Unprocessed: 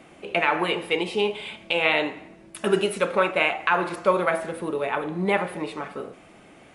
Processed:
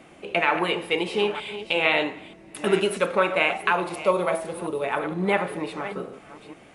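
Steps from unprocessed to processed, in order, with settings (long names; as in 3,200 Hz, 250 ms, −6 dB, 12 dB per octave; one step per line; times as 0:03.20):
delay that plays each chunk backwards 467 ms, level −12.5 dB
0:03.72–0:04.84: graphic EQ with 15 bands 250 Hz −4 dB, 1,600 Hz −9 dB, 10,000 Hz +4 dB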